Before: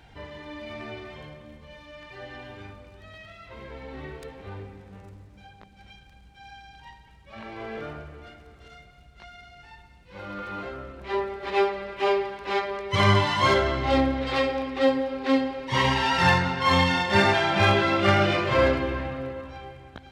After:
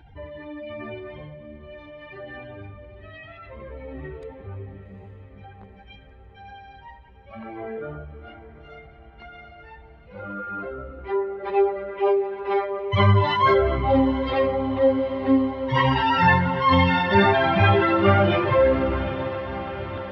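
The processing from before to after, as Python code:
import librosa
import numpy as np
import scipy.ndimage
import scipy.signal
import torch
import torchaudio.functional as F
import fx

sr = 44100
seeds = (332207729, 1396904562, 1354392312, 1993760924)

y = fx.spec_expand(x, sr, power=1.8)
y = fx.echo_diffused(y, sr, ms=815, feedback_pct=65, wet_db=-13.5)
y = F.gain(torch.from_numpy(y), 3.0).numpy()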